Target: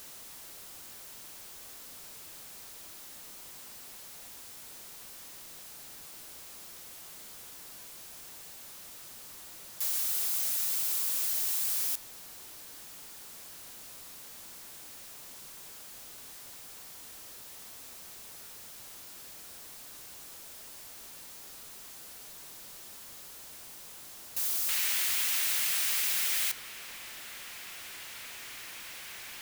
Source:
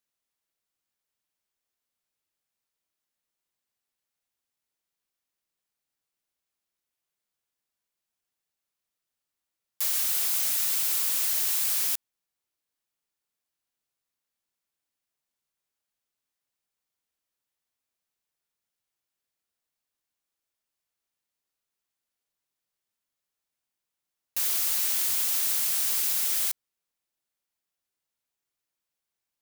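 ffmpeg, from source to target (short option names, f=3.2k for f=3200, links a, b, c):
-af "aeval=exprs='val(0)+0.5*0.0188*sgn(val(0))':c=same,asetnsamples=n=441:p=0,asendcmd='24.69 equalizer g 10',equalizer=f=2.2k:t=o:w=1.7:g=-3,volume=-5.5dB"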